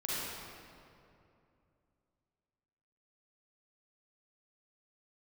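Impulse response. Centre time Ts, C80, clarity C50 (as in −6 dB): 176 ms, −3.0 dB, −6.5 dB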